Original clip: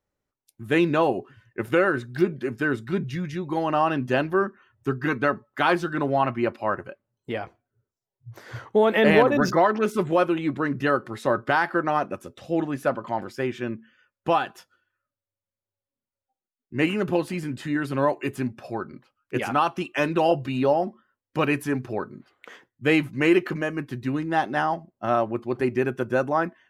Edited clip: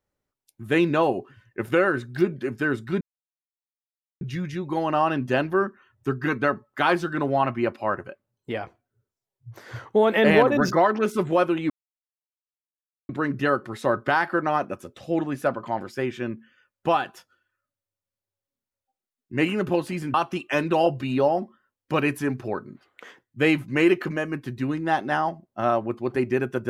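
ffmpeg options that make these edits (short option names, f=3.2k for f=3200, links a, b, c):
-filter_complex "[0:a]asplit=4[a][b][c][d];[a]atrim=end=3.01,asetpts=PTS-STARTPTS,afade=t=out:st=3.006:d=0.004:c=hsin,apad=pad_dur=1.2[e];[b]atrim=start=3.01:end=10.5,asetpts=PTS-STARTPTS,afade=t=in:d=0.004:c=hsin,afade=t=out:st=7.486:d=0.004:c=hsin,apad=pad_dur=1.39[f];[c]atrim=start=10.5:end=17.552,asetpts=PTS-STARTPTS,afade=t=in:d=0.004:c=hsin[g];[d]atrim=start=19.588[h];[e][f][g]concat=n=3:v=0:a=1[i];[i][h]acrossfade=d=0.004:c1=hsin:c2=hsin"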